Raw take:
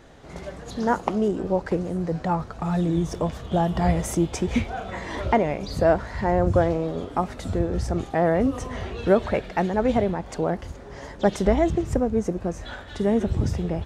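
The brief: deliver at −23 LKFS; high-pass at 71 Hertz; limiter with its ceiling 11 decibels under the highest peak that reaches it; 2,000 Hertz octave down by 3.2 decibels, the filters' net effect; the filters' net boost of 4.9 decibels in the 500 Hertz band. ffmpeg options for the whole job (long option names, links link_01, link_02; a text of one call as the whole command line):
ffmpeg -i in.wav -af "highpass=71,equalizer=frequency=500:width_type=o:gain=6.5,equalizer=frequency=2000:width_type=o:gain=-4.5,volume=2.5dB,alimiter=limit=-11.5dB:level=0:latency=1" out.wav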